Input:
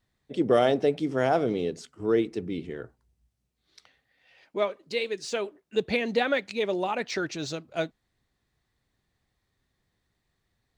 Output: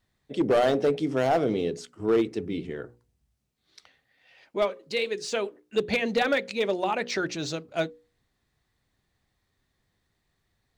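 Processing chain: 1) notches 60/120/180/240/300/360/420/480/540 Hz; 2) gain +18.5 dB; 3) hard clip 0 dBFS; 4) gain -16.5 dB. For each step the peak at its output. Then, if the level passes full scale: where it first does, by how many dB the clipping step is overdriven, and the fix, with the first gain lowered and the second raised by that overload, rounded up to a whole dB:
-9.5, +9.0, 0.0, -16.5 dBFS; step 2, 9.0 dB; step 2 +9.5 dB, step 4 -7.5 dB

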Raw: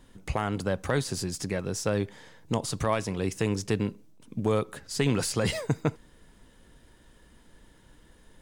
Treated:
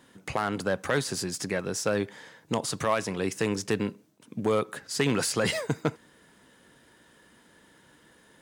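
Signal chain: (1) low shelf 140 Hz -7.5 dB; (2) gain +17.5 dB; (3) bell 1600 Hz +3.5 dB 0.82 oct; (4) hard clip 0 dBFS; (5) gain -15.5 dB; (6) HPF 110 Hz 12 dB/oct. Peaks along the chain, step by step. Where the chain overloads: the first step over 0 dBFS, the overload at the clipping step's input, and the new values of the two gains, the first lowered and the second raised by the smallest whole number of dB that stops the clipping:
-13.0, +4.5, +6.0, 0.0, -15.5, -12.0 dBFS; step 2, 6.0 dB; step 2 +11.5 dB, step 5 -9.5 dB

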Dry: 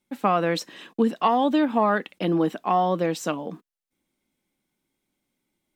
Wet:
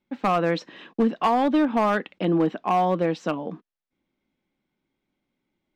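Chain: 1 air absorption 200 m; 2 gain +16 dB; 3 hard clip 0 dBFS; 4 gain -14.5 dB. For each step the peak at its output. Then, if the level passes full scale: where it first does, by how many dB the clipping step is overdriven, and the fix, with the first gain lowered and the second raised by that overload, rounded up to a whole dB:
-8.5, +7.5, 0.0, -14.5 dBFS; step 2, 7.5 dB; step 2 +8 dB, step 4 -6.5 dB

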